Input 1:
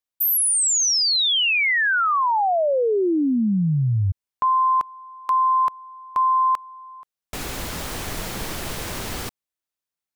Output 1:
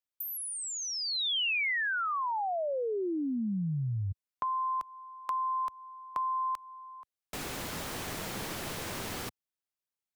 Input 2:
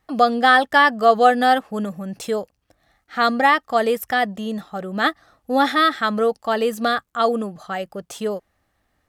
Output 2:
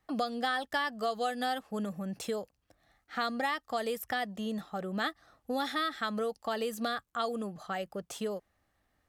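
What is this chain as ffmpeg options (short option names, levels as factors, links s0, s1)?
-filter_complex "[0:a]acrossover=split=91|3200[s0][s1][s2];[s0]acompressor=threshold=0.00501:ratio=4[s3];[s1]acompressor=threshold=0.0562:ratio=4[s4];[s2]acompressor=threshold=0.0224:ratio=4[s5];[s3][s4][s5]amix=inputs=3:normalize=0,volume=0.473"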